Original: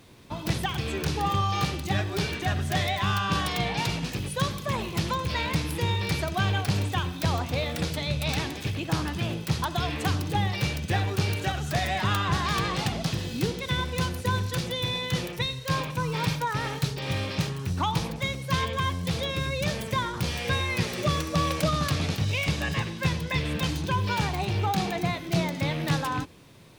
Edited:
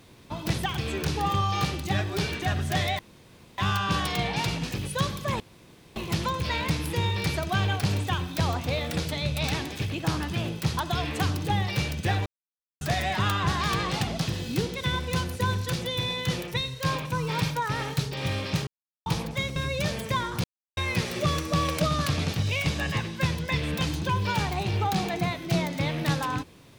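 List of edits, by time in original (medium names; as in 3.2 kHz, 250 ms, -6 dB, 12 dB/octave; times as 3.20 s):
2.99 s: insert room tone 0.59 s
4.81 s: insert room tone 0.56 s
11.11–11.66 s: mute
17.52–17.91 s: mute
18.41–19.38 s: delete
20.26–20.59 s: mute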